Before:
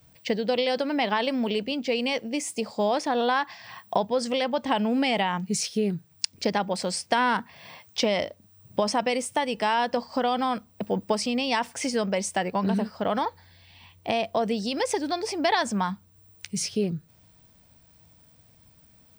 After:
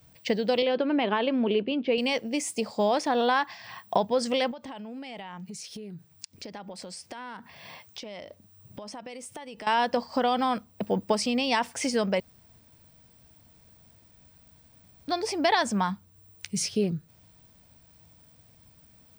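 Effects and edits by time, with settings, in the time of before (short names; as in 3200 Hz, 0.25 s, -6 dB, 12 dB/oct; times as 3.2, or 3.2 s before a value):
0.62–1.98 speaker cabinet 100–3200 Hz, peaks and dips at 360 Hz +9 dB, 790 Hz -4 dB, 2000 Hz -6 dB
4.51–9.67 compressor 10:1, threshold -37 dBFS
12.2–15.08 room tone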